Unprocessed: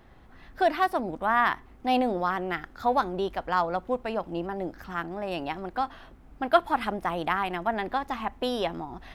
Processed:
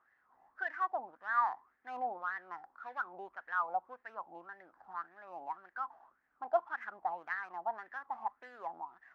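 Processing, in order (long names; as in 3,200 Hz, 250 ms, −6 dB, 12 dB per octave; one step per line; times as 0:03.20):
running median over 15 samples
LFO wah 1.8 Hz 780–1,800 Hz, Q 8.4
level +1 dB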